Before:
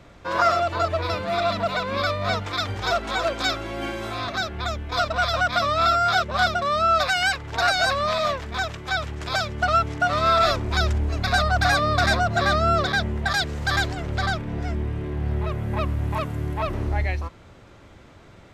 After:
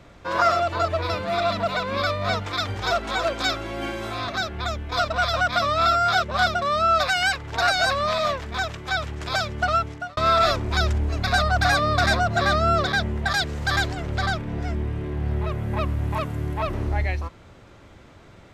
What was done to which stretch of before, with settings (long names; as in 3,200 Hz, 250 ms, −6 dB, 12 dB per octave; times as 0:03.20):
0:09.47–0:10.17: fade out equal-power